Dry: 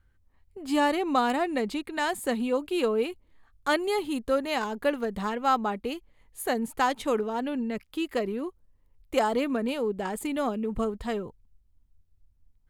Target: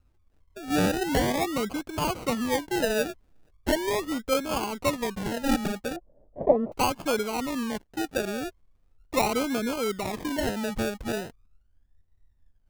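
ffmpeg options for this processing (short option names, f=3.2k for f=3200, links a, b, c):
-filter_complex "[0:a]acrusher=samples=33:mix=1:aa=0.000001:lfo=1:lforange=19.8:lforate=0.39,asettb=1/sr,asplit=3[a][b][c];[a]atrim=end=5.964[d];[b]atrim=start=5.96:end=6.72,asetpts=PTS-STARTPTS,afade=t=in:d=0.004:c=qsin,afade=t=out:st=0.756:d=0.004:c=qsin,lowpass=f=600:t=q:w=4.5[e];[c]atrim=start=6.716[f];[d][e]acrossfade=d=0.004:c1=hsin:c2=qsin[g];[g][f]acrossfade=d=0.004:c1=qsin:c2=hsin"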